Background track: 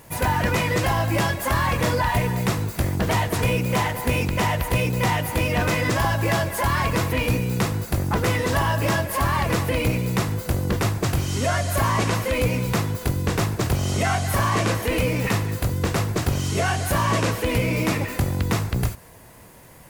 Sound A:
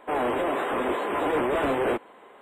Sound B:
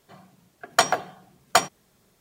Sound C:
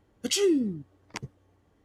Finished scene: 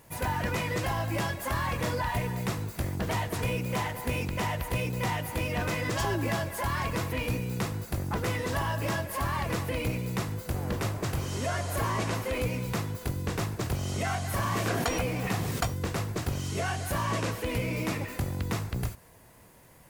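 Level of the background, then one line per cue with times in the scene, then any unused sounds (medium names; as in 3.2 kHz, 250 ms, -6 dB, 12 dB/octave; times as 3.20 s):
background track -8.5 dB
5.66 s: add C -11.5 dB + decay stretcher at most 110 dB/s
10.46 s: add A -17 dB
14.07 s: add B -14 dB + swell ahead of each attack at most 31 dB/s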